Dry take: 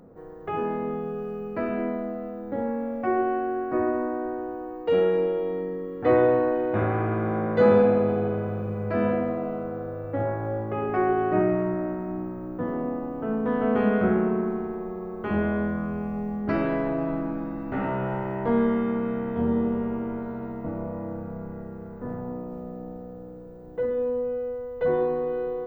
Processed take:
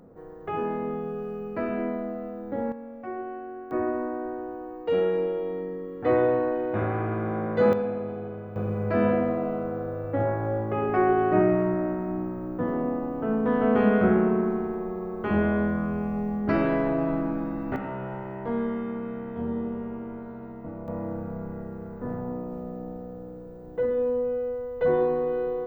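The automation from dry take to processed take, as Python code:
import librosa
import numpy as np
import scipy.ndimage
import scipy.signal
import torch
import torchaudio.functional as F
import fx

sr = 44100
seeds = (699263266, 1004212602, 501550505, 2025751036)

y = fx.gain(x, sr, db=fx.steps((0.0, -1.0), (2.72, -10.5), (3.71, -2.5), (7.73, -9.5), (8.56, 1.5), (17.76, -6.0), (20.88, 1.0)))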